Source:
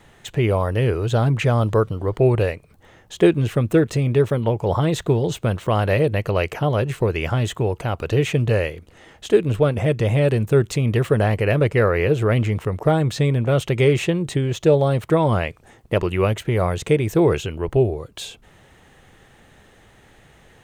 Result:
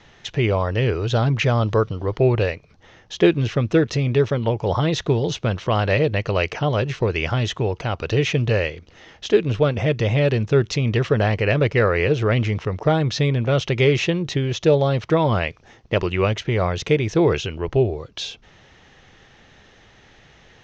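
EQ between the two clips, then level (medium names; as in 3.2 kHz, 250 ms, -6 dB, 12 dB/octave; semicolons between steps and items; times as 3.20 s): elliptic low-pass 5.9 kHz, stop band 50 dB; treble shelf 3.3 kHz +9 dB; 0.0 dB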